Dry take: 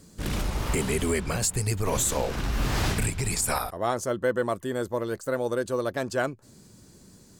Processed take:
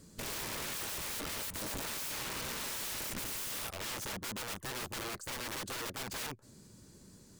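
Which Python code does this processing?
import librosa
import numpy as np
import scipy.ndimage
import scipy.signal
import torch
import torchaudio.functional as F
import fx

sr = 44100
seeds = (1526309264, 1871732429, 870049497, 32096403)

y = (np.mod(10.0 ** (30.0 / 20.0) * x + 1.0, 2.0) - 1.0) / 10.0 ** (30.0 / 20.0)
y = fx.notch(y, sr, hz=730.0, q=12.0)
y = y * librosa.db_to_amplitude(-4.5)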